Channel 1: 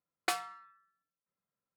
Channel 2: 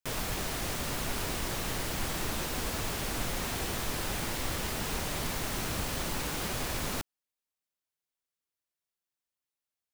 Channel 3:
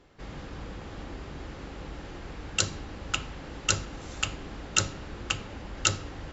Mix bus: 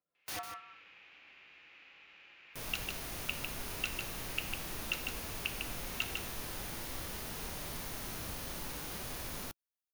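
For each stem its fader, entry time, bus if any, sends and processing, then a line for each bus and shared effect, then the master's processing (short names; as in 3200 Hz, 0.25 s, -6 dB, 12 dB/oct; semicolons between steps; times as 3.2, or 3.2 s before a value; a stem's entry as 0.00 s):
-1.0 dB, 0.00 s, no send, echo send -9.5 dB, bell 750 Hz +9.5 dB 2.3 oct; rotary speaker horn 5 Hz; wrapped overs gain 30.5 dB
-7.5 dB, 2.50 s, no send, no echo send, high shelf 8000 Hz +6.5 dB
+1.5 dB, 0.15 s, no send, echo send -5 dB, band-pass 2500 Hz, Q 5.1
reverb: off
echo: echo 0.151 s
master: notch 7700 Hz, Q 6.1; harmonic-percussive split percussive -5 dB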